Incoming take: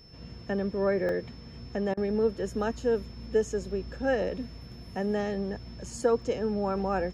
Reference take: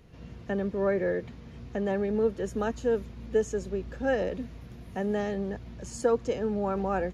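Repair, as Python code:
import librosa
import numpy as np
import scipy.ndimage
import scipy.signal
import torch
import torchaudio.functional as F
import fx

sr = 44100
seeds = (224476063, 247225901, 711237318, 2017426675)

y = fx.notch(x, sr, hz=5300.0, q=30.0)
y = fx.fix_interpolate(y, sr, at_s=(1.09, 3.71, 4.86, 6.22), length_ms=1.6)
y = fx.fix_interpolate(y, sr, at_s=(1.94,), length_ms=31.0)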